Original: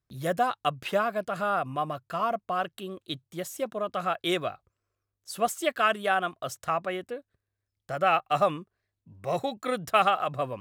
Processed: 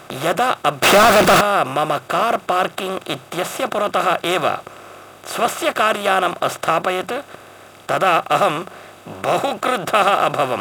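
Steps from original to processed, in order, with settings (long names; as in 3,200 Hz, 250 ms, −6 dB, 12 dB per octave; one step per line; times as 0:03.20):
compressor on every frequency bin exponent 0.4
mains-hum notches 60/120/180 Hz
0:00.83–0:01.41: power curve on the samples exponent 0.35
level +3.5 dB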